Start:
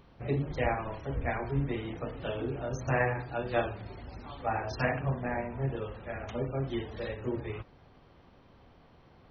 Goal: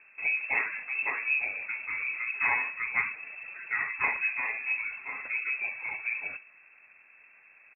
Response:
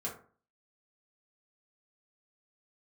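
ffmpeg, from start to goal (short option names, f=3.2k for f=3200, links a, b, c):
-filter_complex "[0:a]atempo=1.2,asplit=2[a][b];[1:a]atrim=start_sample=2205[c];[b][c]afir=irnorm=-1:irlink=0,volume=-14dB[d];[a][d]amix=inputs=2:normalize=0,lowpass=f=2.3k:t=q:w=0.5098,lowpass=f=2.3k:t=q:w=0.6013,lowpass=f=2.3k:t=q:w=0.9,lowpass=f=2.3k:t=q:w=2.563,afreqshift=-2700"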